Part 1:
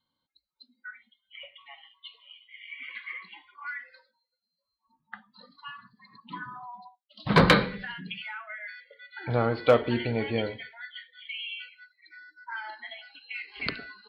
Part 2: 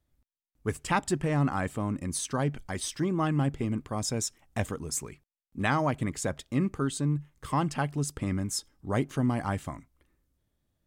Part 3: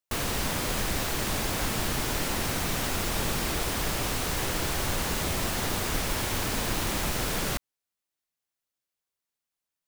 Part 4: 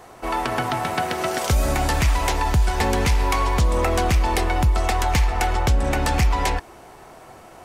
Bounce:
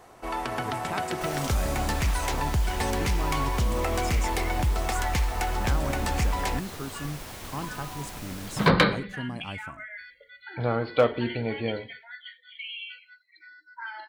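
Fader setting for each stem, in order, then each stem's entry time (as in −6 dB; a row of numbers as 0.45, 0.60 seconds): −1.0, −8.0, −11.5, −7.0 decibels; 1.30, 0.00, 1.10, 0.00 seconds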